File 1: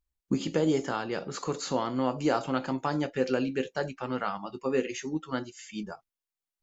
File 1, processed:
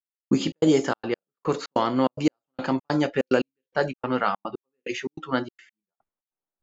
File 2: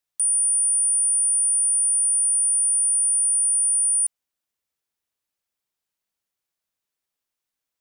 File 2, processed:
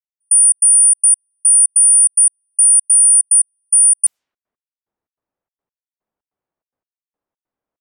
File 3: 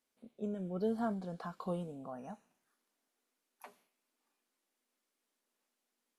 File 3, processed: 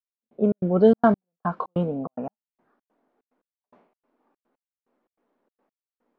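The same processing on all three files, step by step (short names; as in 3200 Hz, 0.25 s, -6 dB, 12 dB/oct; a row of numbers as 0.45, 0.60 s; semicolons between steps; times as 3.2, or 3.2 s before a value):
low-pass opened by the level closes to 870 Hz, open at -22.5 dBFS; low shelf 130 Hz -7 dB; step gate "...xx.xxx.x" 145 bpm -60 dB; normalise peaks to -6 dBFS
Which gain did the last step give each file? +8.0, +11.0, +19.5 dB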